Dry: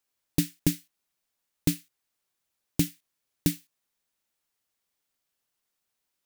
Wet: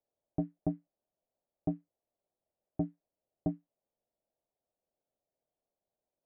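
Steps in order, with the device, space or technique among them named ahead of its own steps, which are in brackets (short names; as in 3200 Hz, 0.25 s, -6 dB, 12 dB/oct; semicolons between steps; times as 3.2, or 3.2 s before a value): overdriven synthesiser ladder filter (soft clip -22.5 dBFS, distortion -7 dB; ladder low-pass 710 Hz, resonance 60%); gain +8 dB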